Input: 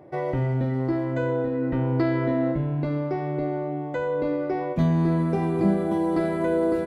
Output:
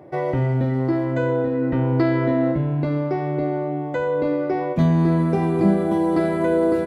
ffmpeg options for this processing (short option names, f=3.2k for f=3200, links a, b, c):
-af "highpass=52,volume=4dB"